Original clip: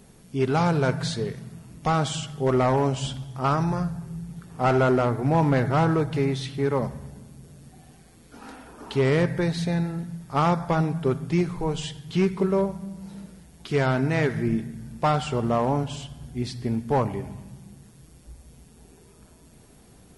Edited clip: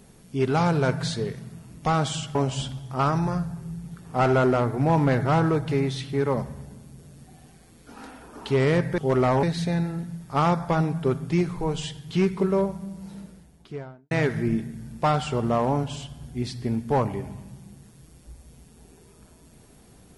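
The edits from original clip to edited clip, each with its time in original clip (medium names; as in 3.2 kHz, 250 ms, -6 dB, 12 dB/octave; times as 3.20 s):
2.35–2.80 s: move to 9.43 s
13.11–14.11 s: studio fade out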